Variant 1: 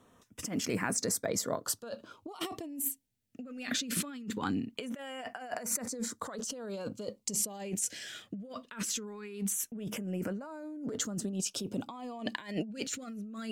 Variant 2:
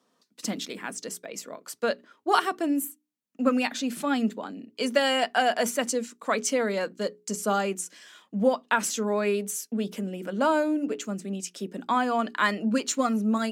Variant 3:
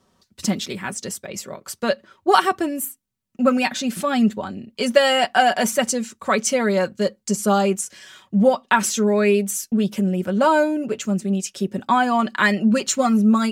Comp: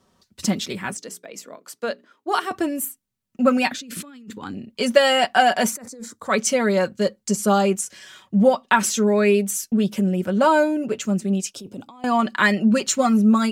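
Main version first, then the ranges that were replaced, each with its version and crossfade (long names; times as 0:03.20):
3
0:00.97–0:02.51: punch in from 2
0:03.72–0:04.54: punch in from 1
0:05.73–0:06.29: punch in from 1, crossfade 0.10 s
0:11.51–0:12.04: punch in from 1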